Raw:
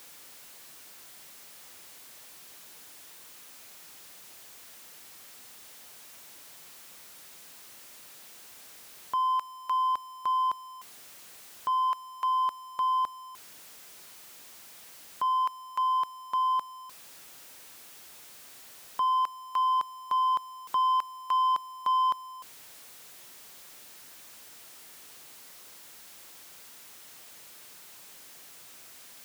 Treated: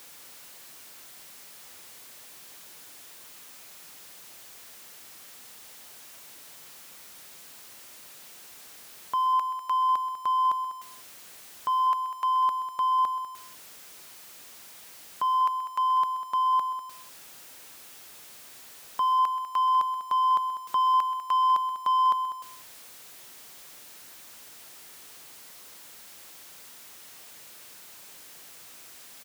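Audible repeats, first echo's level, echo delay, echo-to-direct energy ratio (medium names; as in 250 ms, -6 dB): 2, -14.0 dB, 129 ms, -10.0 dB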